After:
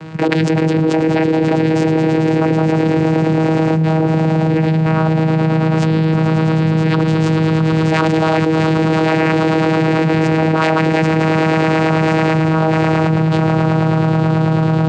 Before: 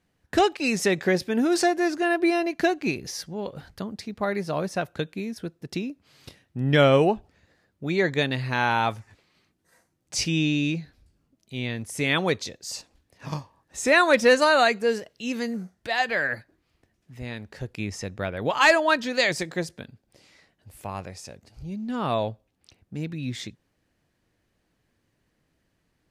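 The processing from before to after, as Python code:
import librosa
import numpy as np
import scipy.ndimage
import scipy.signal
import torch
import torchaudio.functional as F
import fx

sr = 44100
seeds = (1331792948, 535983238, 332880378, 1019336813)

p1 = fx.cvsd(x, sr, bps=64000)
p2 = scipy.signal.sosfilt(scipy.signal.butter(2, 4500.0, 'lowpass', fs=sr, output='sos'), p1)
p3 = fx.peak_eq(p2, sr, hz=1100.0, db=3.5, octaves=0.44)
p4 = fx.rider(p3, sr, range_db=3, speed_s=0.5)
p5 = p3 + (p4 * 10.0 ** (-1.5 / 20.0))
p6 = fx.stretch_grains(p5, sr, factor=0.57, grain_ms=40.0)
p7 = 10.0 ** (-12.0 / 20.0) * (np.abs((p6 / 10.0 ** (-12.0 / 20.0) + 3.0) % 4.0 - 2.0) - 1.0)
p8 = p7 + fx.echo_swell(p7, sr, ms=109, loudest=8, wet_db=-12.0, dry=0)
p9 = fx.vocoder(p8, sr, bands=8, carrier='saw', carrier_hz=159.0)
p10 = fx.env_flatten(p9, sr, amount_pct=100)
y = p10 * 10.0 ** (-1.5 / 20.0)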